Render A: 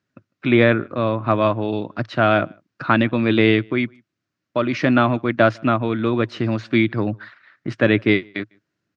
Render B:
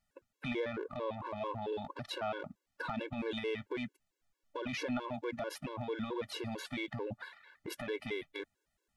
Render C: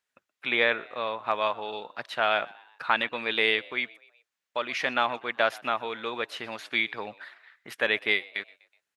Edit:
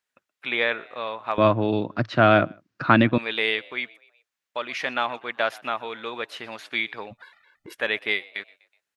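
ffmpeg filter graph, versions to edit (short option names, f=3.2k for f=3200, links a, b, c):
-filter_complex "[2:a]asplit=3[a][b][c];[a]atrim=end=1.382[d];[0:a]atrim=start=1.378:end=3.182[e];[b]atrim=start=3.178:end=7.18[f];[1:a]atrim=start=7.02:end=7.84[g];[c]atrim=start=7.68[h];[d][e]acrossfade=d=0.004:c1=hsin:c2=hsin[i];[i][f]acrossfade=d=0.004:c1=hsin:c2=hsin[j];[j][g]acrossfade=d=0.16:c1=tri:c2=tri[k];[k][h]acrossfade=d=0.16:c1=tri:c2=tri"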